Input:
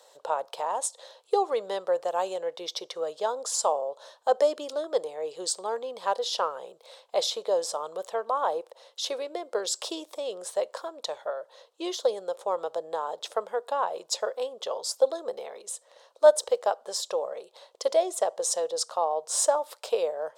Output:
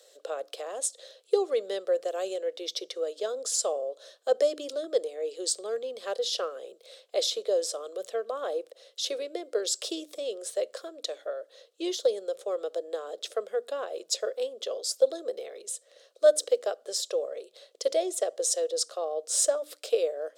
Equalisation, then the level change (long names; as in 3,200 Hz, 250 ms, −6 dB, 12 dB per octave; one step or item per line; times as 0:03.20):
elliptic high-pass filter 170 Hz
mains-hum notches 60/120/180/240/300 Hz
phaser with its sweep stopped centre 380 Hz, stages 4
+2.0 dB